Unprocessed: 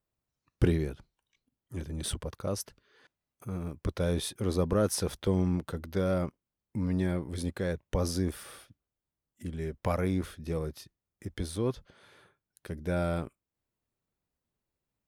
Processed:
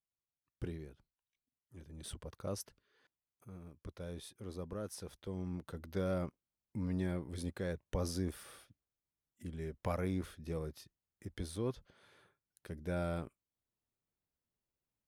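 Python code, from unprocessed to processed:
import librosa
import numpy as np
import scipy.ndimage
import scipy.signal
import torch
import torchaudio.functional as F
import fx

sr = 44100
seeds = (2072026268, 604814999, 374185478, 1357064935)

y = fx.gain(x, sr, db=fx.line((1.74, -17.0), (2.51, -7.0), (3.66, -16.0), (5.25, -16.0), (5.91, -7.0)))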